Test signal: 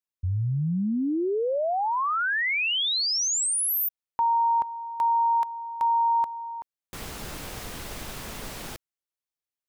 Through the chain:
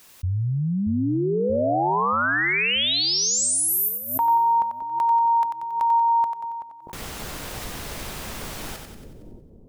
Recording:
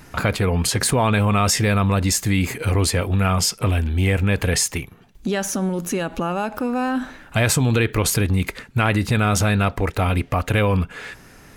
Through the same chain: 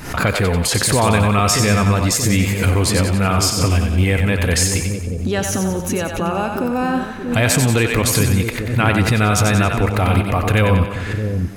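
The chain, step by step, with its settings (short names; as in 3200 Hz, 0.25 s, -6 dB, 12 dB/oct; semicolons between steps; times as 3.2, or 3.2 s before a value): split-band echo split 470 Hz, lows 0.63 s, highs 92 ms, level -5.5 dB; backwards sustainer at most 87 dB/s; gain +2 dB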